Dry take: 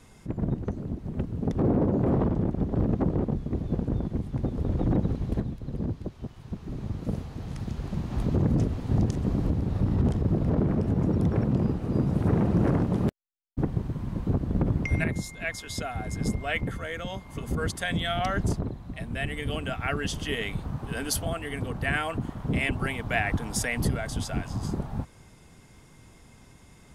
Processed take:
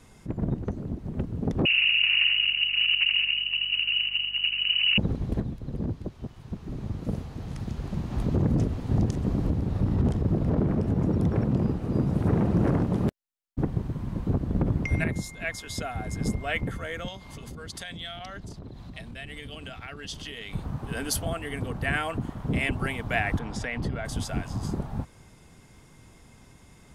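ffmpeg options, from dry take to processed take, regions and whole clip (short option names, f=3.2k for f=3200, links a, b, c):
-filter_complex "[0:a]asettb=1/sr,asplit=3[a][b][c];[a]atrim=end=1.654[d];[b]atrim=start=1.65:end=4.98,asetpts=PTS-STARTPTS,afade=t=in:d=0.004:c=qsin,afade=t=out:st=3.326:d=0.004:c=qsin,lowpass=f=2.6k:t=q:w=0.5098,lowpass=f=2.6k:t=q:w=0.6013,lowpass=f=2.6k:t=q:w=0.9,lowpass=f=2.6k:t=q:w=2.563,afreqshift=-3000,aeval=exprs='val(0)+0.00141*(sin(2*PI*50*n/s)+sin(2*PI*2*50*n/s)/2+sin(2*PI*3*50*n/s)/3+sin(2*PI*4*50*n/s)/4+sin(2*PI*5*50*n/s)/5)':c=same,aecho=1:1:80:0.562,atrim=end_sample=146853[e];[c]atrim=start=4.976[f];[d][e]acrossfade=d=0.004:c1=hsin:c2=qsin[g];[g][f]acrossfade=d=0.004:c1=qsin:c2=hsin,asettb=1/sr,asplit=3[h][i][j];[h]atrim=end=17.084[k];[i]atrim=start=17.08:end=20.53,asetpts=PTS-STARTPTS,afade=t=in:d=0.004:c=qsin,afade=t=out:st=3.446:d=0.004:c=qsin,acompressor=threshold=-37dB:ratio=8:attack=3.2:release=140:knee=1:detection=peak,equalizer=f=4.2k:w=0.97:g=9.5[l];[j]atrim=start=20.526[m];[k][l]acrossfade=d=0.004:c1=hsin:c2=qsin[n];[n][m]acrossfade=d=0.004:c1=qsin:c2=hsin,asettb=1/sr,asplit=3[o][p][q];[o]atrim=end=23.394[r];[p]atrim=start=23.39:end=24.05,asetpts=PTS-STARTPTS,afade=t=in:d=0.004:c=qsin,afade=t=out:st=0.656:d=0.004:c=qsin,lowpass=4k,acompressor=threshold=-28dB:ratio=2:attack=3.2:release=140:knee=1:detection=peak[s];[q]atrim=start=24.046[t];[r][s]acrossfade=d=0.004:c1=hsin:c2=qsin[u];[u][t]acrossfade=d=0.004:c1=qsin:c2=hsin"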